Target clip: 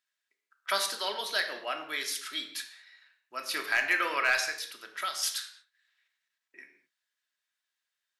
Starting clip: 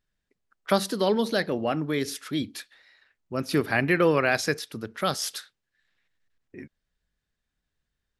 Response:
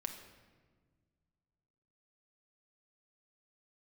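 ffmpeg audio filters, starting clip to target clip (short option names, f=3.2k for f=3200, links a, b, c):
-filter_complex "[0:a]highpass=1.3k,asettb=1/sr,asplit=3[a][b][c];[a]atrim=end=4.394[d];[b]atrim=start=4.39:end=5.23,asetpts=PTS-STARTPTS,afade=t=in:d=0.004:c=qsin,afade=t=out:st=0.836:d=0.004:c=qsin,acompressor=threshold=-33dB:ratio=5[e];[c]atrim=start=5.226[f];[d][e]acrossfade=d=0.004:c1=hsin:c2=qsin[g];[g][f]acrossfade=d=0.004:c1=qsin:c2=hsin,asoftclip=type=hard:threshold=-17dB[h];[1:a]atrim=start_sample=2205,afade=t=out:st=0.45:d=0.01,atrim=end_sample=20286,asetrate=74970,aresample=44100[i];[h][i]afir=irnorm=-1:irlink=0,volume=8dB"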